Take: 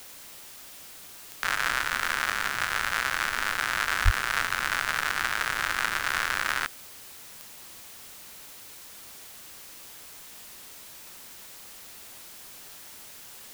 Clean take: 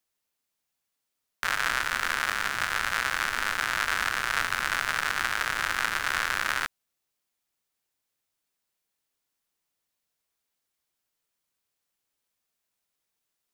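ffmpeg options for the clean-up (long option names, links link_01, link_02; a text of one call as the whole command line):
ffmpeg -i in.wav -filter_complex "[0:a]adeclick=threshold=4,asplit=3[link_01][link_02][link_03];[link_01]afade=type=out:start_time=4.04:duration=0.02[link_04];[link_02]highpass=frequency=140:width=0.5412,highpass=frequency=140:width=1.3066,afade=type=in:start_time=4.04:duration=0.02,afade=type=out:start_time=4.16:duration=0.02[link_05];[link_03]afade=type=in:start_time=4.16:duration=0.02[link_06];[link_04][link_05][link_06]amix=inputs=3:normalize=0,afwtdn=0.005" out.wav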